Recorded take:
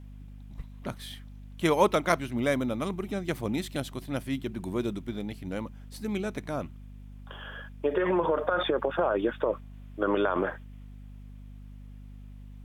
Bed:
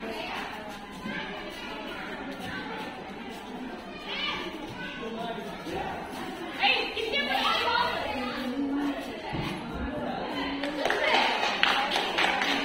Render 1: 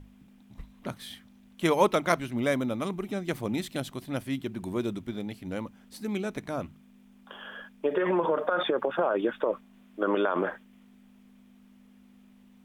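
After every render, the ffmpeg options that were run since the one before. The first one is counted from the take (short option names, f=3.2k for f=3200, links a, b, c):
-af "bandreject=f=50:t=h:w=6,bandreject=f=100:t=h:w=6,bandreject=f=150:t=h:w=6"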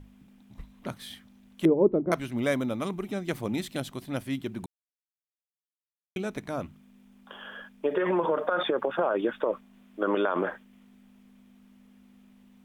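-filter_complex "[0:a]asettb=1/sr,asplit=3[a][b][c];[a]atrim=end=1.654[d];[b]atrim=start=1.65:end=2.12,asetpts=PTS-STARTPTS,afade=t=in:d=0.004:c=qsin,afade=t=out:st=0.466:d=0.004:c=qsin,lowpass=f=370:t=q:w=2.2[e];[c]atrim=start=2.116[f];[d][e]acrossfade=d=0.004:c1=hsin:c2=qsin[g];[g][f]acrossfade=d=0.004:c1=qsin:c2=hsin,asplit=3[h][i][j];[h]atrim=end=4.66,asetpts=PTS-STARTPTS,afade=t=out:st=4.656:d=0.004:c=hsin[k];[i]atrim=start=4.66:end=6.16,asetpts=PTS-STARTPTS,volume=0[l];[j]atrim=start=6.16,asetpts=PTS-STARTPTS,afade=t=in:d=0.004:c=hsin[m];[k][l][m]concat=n=3:v=0:a=1"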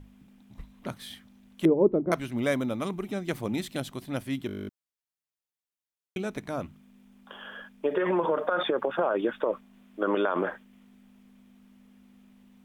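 -filter_complex "[0:a]asplit=12[a][b][c][d][e][f][g][h][i][j][k][l];[a]atrim=end=4.492[m];[b]atrim=start=4.468:end=4.492[n];[c]atrim=start=4.468:end=4.492[o];[d]atrim=start=4.468:end=4.492[p];[e]atrim=start=4.468:end=4.492[q];[f]atrim=start=4.468:end=4.492[r];[g]atrim=start=4.468:end=4.492[s];[h]atrim=start=4.468:end=4.492[t];[i]atrim=start=4.468:end=4.492[u];[j]atrim=start=4.468:end=4.492[v];[k]atrim=start=4.468:end=4.492[w];[l]atrim=start=4.688[x];[m][n]acrossfade=d=0.004:c1=hsin:c2=hsin[y];[y][o]acrossfade=d=0.004:c1=hsin:c2=hsin[z];[z][p]acrossfade=d=0.004:c1=hsin:c2=hsin[aa];[aa][q]acrossfade=d=0.004:c1=hsin:c2=hsin[ab];[ab][r]acrossfade=d=0.004:c1=hsin:c2=hsin[ac];[ac][s]acrossfade=d=0.004:c1=hsin:c2=hsin[ad];[ad][t]acrossfade=d=0.004:c1=hsin:c2=hsin[ae];[ae][u]acrossfade=d=0.004:c1=hsin:c2=hsin[af];[af][v]acrossfade=d=0.004:c1=hsin:c2=hsin[ag];[ag][w]acrossfade=d=0.004:c1=hsin:c2=hsin[ah];[ah][x]acrossfade=d=0.004:c1=hsin:c2=hsin"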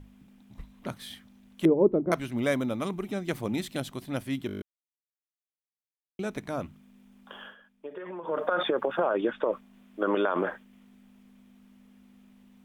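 -filter_complex "[0:a]asettb=1/sr,asplit=3[a][b][c];[a]atrim=end=9.044[d];[b]atrim=start=9.04:end=9.52,asetpts=PTS-STARTPTS,afade=t=in:d=0.004:c=qsin,afade=t=out:st=0.476:d=0.004:c=qsin,lowpass=7.5k[e];[c]atrim=start=9.516[f];[d][e]acrossfade=d=0.004:c1=hsin:c2=qsin[g];[g][f]acrossfade=d=0.004:c1=qsin:c2=hsin,asplit=5[h][i][j][k][l];[h]atrim=end=4.62,asetpts=PTS-STARTPTS,afade=t=out:st=4.616:d=0.004:c=hsin[m];[i]atrim=start=4.62:end=6.19,asetpts=PTS-STARTPTS,volume=0[n];[j]atrim=start=6.19:end=7.56,asetpts=PTS-STARTPTS,afade=t=in:d=0.004:c=hsin,afade=t=out:st=1.17:d=0.2:c=qsin:silence=0.211349[o];[k]atrim=start=7.56:end=8.25,asetpts=PTS-STARTPTS,volume=-13.5dB[p];[l]atrim=start=8.25,asetpts=PTS-STARTPTS,afade=t=in:d=0.2:c=qsin:silence=0.211349[q];[m][n][o][p][q]concat=n=5:v=0:a=1"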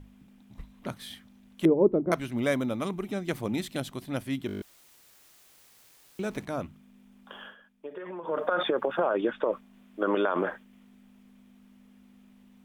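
-filter_complex "[0:a]asettb=1/sr,asplit=3[a][b][c];[a]atrim=end=4.484[d];[b]atrim=start=4.48:end=6.45,asetpts=PTS-STARTPTS,afade=t=in:d=0.004:c=qsin,afade=t=out:st=1.966:d=0.004:c=qsin,aeval=exprs='val(0)+0.5*0.00473*sgn(val(0))':c=same[e];[c]atrim=start=6.446[f];[d][e]acrossfade=d=0.004:c1=hsin:c2=qsin[g];[g][f]acrossfade=d=0.004:c1=qsin:c2=hsin"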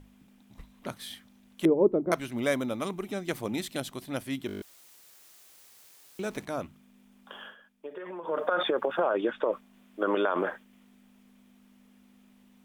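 -af "bass=f=250:g=-5,treble=f=4k:g=3"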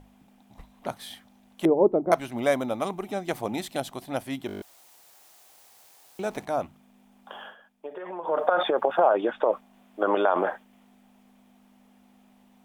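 -af "equalizer=f=760:w=1.9:g=11.5"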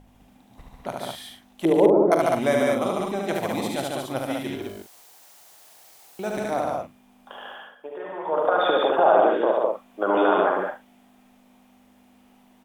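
-filter_complex "[0:a]asplit=2[a][b];[b]adelay=43,volume=-10dB[c];[a][c]amix=inputs=2:normalize=0,aecho=1:1:72.89|145.8|204.1:0.708|0.708|0.631"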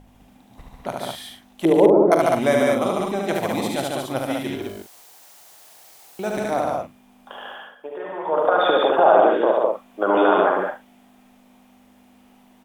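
-af "volume=3dB,alimiter=limit=-2dB:level=0:latency=1"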